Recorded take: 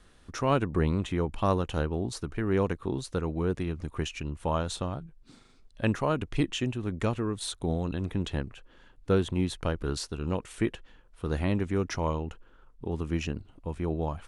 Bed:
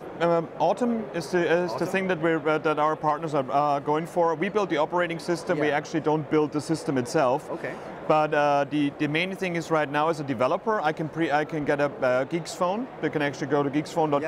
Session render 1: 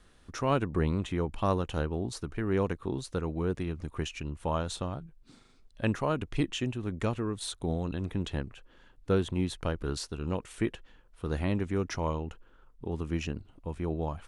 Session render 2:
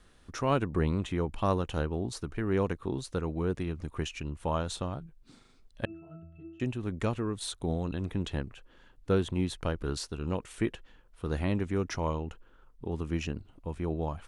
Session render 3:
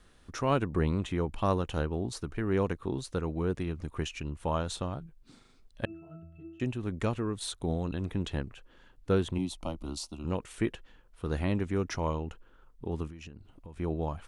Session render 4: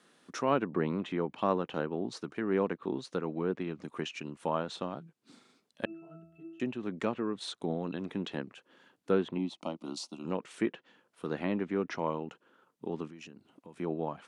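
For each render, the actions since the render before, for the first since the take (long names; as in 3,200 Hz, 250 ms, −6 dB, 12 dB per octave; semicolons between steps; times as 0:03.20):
level −2 dB
0:05.85–0:06.60: resonances in every octave E, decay 0.65 s
0:09.38–0:10.25: phaser with its sweep stopped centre 440 Hz, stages 6; 0:13.07–0:13.79: downward compressor 16 to 1, threshold −41 dBFS
high-pass filter 180 Hz 24 dB per octave; treble cut that deepens with the level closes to 2,800 Hz, closed at −29 dBFS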